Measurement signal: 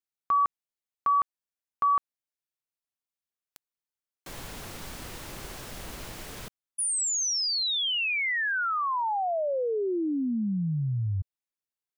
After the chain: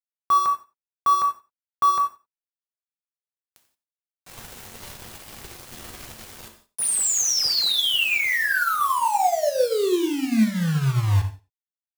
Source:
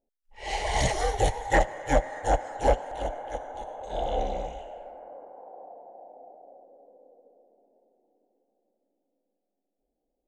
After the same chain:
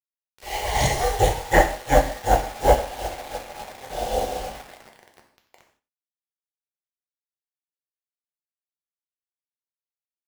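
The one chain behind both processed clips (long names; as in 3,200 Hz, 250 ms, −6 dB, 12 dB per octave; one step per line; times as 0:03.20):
bit-depth reduction 6 bits, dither none
single-tap delay 90 ms −18 dB
reverb whose tail is shaped and stops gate 200 ms falling, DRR 2 dB
expander for the loud parts 1.5 to 1, over −40 dBFS
level +5.5 dB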